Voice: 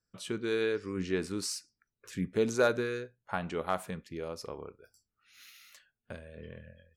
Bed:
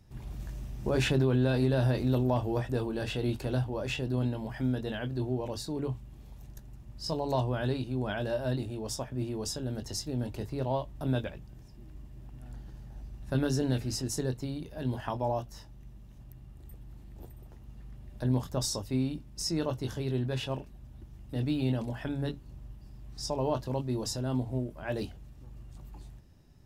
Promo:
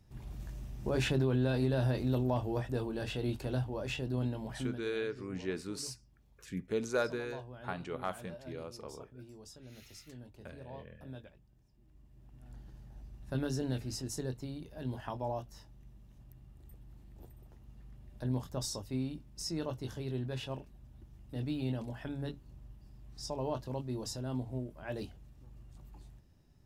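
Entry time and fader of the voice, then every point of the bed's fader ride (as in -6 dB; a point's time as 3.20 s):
4.35 s, -5.5 dB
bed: 4.57 s -4 dB
4.88 s -17.5 dB
11.72 s -17.5 dB
12.57 s -6 dB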